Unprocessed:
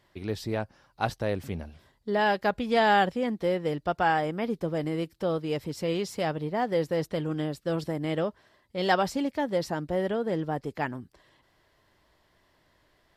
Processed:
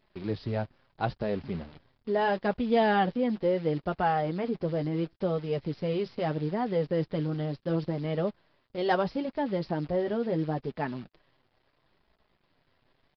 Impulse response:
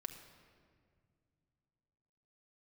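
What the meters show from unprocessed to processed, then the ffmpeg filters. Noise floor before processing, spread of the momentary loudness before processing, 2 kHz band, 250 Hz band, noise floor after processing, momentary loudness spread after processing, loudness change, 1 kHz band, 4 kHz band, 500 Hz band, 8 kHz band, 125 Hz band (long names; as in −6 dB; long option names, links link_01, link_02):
−68 dBFS, 9 LU, −5.5 dB, 0.0 dB, −73 dBFS, 8 LU, −1.0 dB, −3.0 dB, −6.0 dB, −0.5 dB, below −20 dB, +1.5 dB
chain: -af "tiltshelf=frequency=860:gain=4,acrusher=bits=8:dc=4:mix=0:aa=0.000001,aresample=11025,aresample=44100,flanger=delay=4.6:depth=3.4:regen=-33:speed=0.74:shape=sinusoidal,volume=1dB"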